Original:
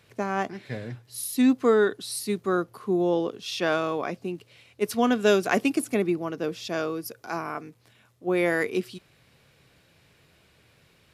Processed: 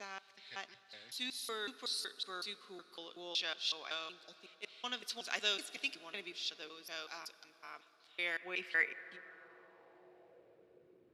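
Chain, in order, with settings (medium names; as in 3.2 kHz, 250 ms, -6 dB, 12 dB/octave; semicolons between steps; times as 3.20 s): slices played last to first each 186 ms, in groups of 2; spectral selection erased 4.12–4.37 s, 960–3400 Hz; plate-style reverb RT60 5 s, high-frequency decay 0.55×, DRR 15.5 dB; band-pass sweep 3.9 kHz -> 360 Hz, 8.06–11.03 s; trim +1 dB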